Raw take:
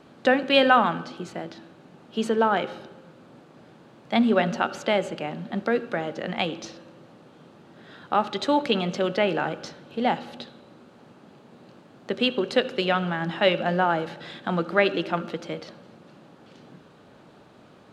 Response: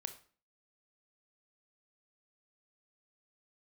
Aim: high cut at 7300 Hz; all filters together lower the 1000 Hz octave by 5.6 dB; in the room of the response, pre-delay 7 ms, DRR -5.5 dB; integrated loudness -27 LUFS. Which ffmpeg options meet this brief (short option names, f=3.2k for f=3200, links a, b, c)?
-filter_complex "[0:a]lowpass=7.3k,equalizer=f=1k:t=o:g=-8,asplit=2[a][b];[1:a]atrim=start_sample=2205,adelay=7[c];[b][c]afir=irnorm=-1:irlink=0,volume=8dB[d];[a][d]amix=inputs=2:normalize=0,volume=-6.5dB"